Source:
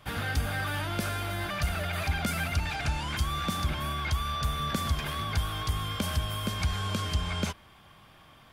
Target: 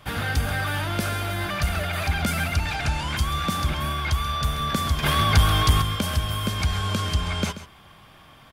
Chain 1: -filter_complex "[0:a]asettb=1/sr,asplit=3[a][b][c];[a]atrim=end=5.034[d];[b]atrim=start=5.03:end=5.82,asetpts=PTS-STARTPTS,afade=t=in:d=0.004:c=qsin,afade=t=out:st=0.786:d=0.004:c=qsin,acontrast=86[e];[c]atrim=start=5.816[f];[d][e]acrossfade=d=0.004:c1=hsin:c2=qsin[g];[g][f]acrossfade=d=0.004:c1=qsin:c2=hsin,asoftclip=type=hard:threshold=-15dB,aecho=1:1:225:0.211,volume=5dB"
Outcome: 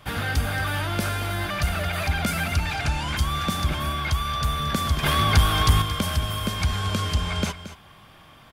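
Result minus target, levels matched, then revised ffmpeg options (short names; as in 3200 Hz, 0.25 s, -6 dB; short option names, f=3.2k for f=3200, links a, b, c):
echo 91 ms late
-filter_complex "[0:a]asettb=1/sr,asplit=3[a][b][c];[a]atrim=end=5.034[d];[b]atrim=start=5.03:end=5.82,asetpts=PTS-STARTPTS,afade=t=in:d=0.004:c=qsin,afade=t=out:st=0.786:d=0.004:c=qsin,acontrast=86[e];[c]atrim=start=5.816[f];[d][e]acrossfade=d=0.004:c1=hsin:c2=qsin[g];[g][f]acrossfade=d=0.004:c1=qsin:c2=hsin,asoftclip=type=hard:threshold=-15dB,aecho=1:1:134:0.211,volume=5dB"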